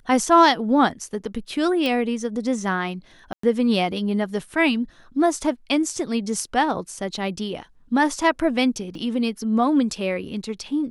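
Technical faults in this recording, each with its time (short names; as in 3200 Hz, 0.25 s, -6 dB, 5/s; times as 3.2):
1.86 pop -12 dBFS
3.33–3.43 gap 0.104 s
8.95 gap 2.2 ms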